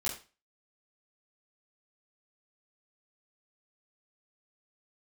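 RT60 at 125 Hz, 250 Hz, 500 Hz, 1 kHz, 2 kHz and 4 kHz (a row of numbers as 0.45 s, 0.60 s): 0.35 s, 0.35 s, 0.30 s, 0.35 s, 0.30 s, 0.30 s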